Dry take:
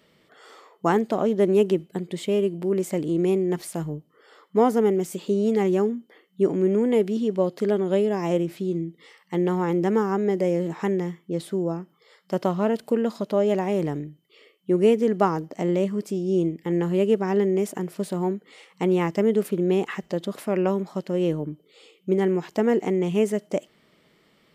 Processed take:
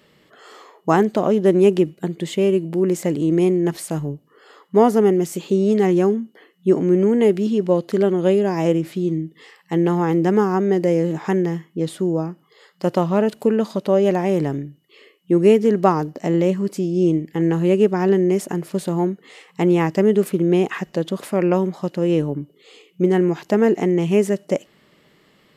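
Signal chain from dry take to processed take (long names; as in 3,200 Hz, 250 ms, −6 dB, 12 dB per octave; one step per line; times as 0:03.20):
speed change −4%
level +5 dB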